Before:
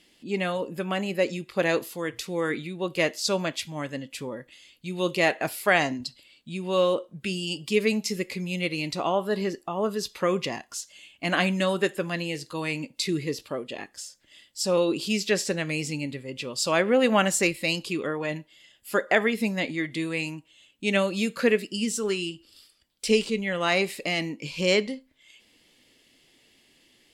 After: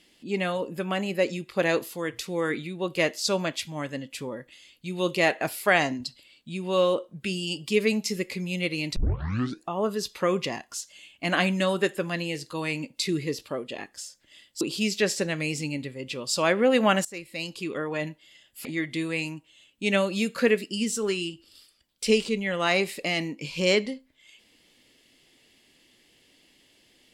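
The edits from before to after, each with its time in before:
8.96 tape start 0.72 s
14.61–14.9 cut
17.34–18.25 fade in, from -23.5 dB
18.94–19.66 cut

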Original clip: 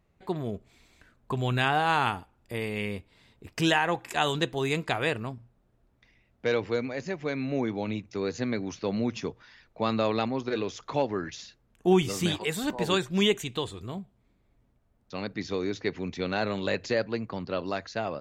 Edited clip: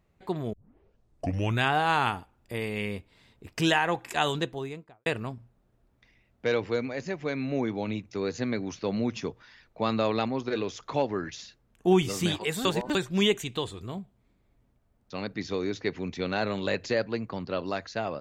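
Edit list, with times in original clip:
0.53 tape start 1.09 s
4.2–5.06 studio fade out
12.65–12.95 reverse

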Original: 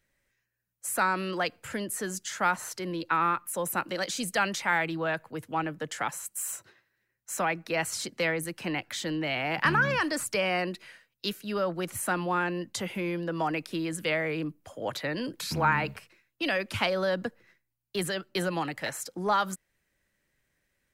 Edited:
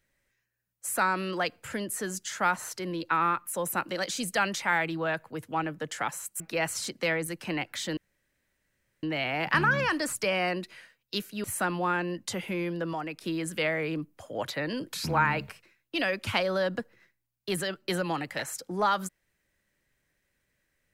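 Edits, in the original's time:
6.4–7.57 cut
9.14 insert room tone 1.06 s
11.55–11.91 cut
13.4–13.68 gain -5.5 dB

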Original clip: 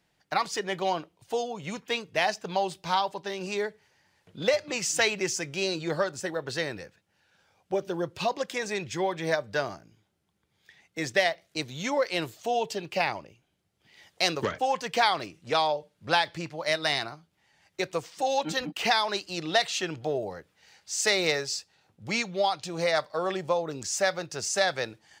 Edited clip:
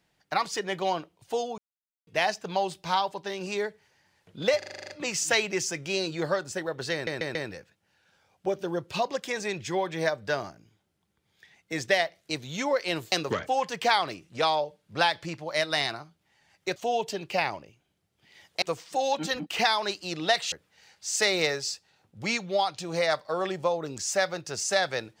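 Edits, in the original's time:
1.58–2.07 mute
4.58 stutter 0.04 s, 9 plays
6.61 stutter 0.14 s, 4 plays
12.38–14.24 move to 17.88
19.78–20.37 cut

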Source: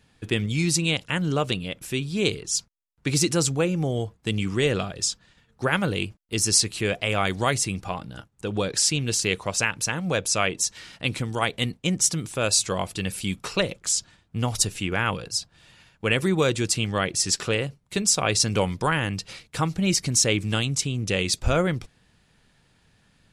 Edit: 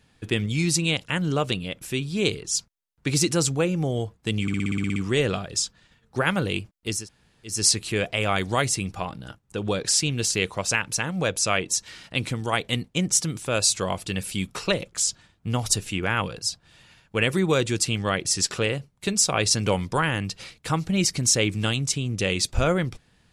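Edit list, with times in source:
4.42 stutter 0.06 s, 10 plays
6.43 insert room tone 0.57 s, crossfade 0.24 s

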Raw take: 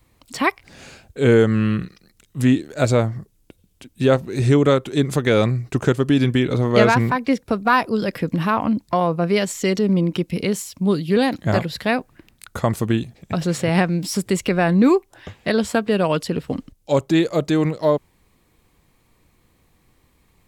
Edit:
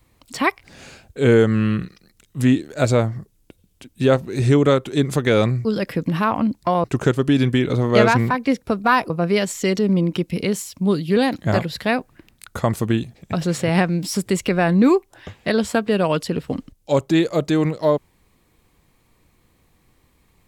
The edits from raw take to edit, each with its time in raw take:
7.91–9.1 move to 5.65

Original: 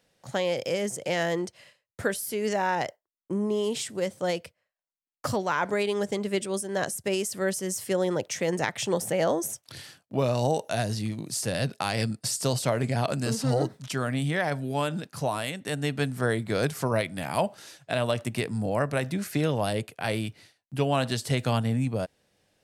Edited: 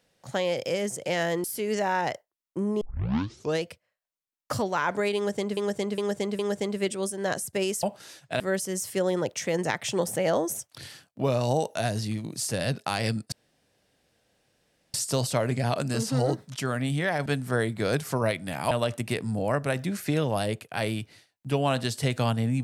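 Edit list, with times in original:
1.44–2.18 cut
3.55 tape start 0.82 s
5.9–6.31 loop, 4 plays
12.26 insert room tone 1.62 s
14.58–15.96 cut
17.41–17.98 move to 7.34

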